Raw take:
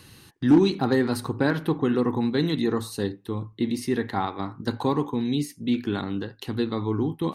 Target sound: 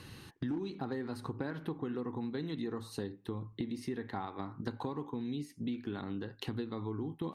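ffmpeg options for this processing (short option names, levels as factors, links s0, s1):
-af "aemphasis=mode=reproduction:type=cd,acompressor=threshold=0.0178:ratio=8"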